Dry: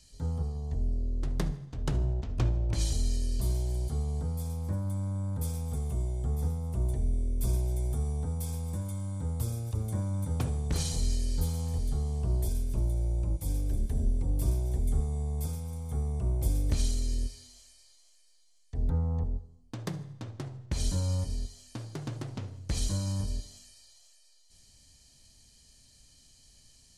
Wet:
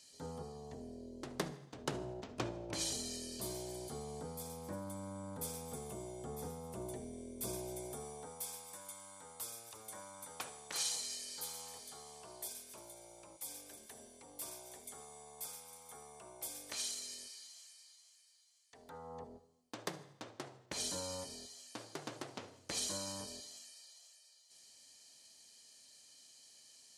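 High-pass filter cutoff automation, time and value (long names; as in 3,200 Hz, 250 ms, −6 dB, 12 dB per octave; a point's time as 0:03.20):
0:07.76 320 Hz
0:08.68 940 Hz
0:18.86 940 Hz
0:19.32 420 Hz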